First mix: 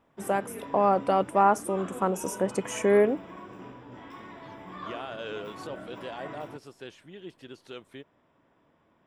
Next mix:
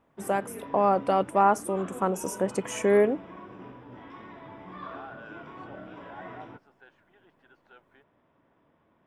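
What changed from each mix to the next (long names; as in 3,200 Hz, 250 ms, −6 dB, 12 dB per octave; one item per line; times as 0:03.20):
second voice: add pair of resonant band-passes 1,100 Hz, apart 0.81 octaves
background: add high-frequency loss of the air 170 metres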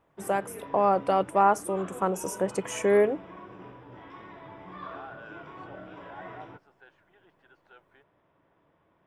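master: add parametric band 240 Hz −11 dB 0.25 octaves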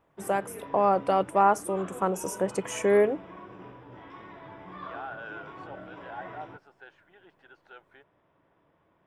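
second voice +5.5 dB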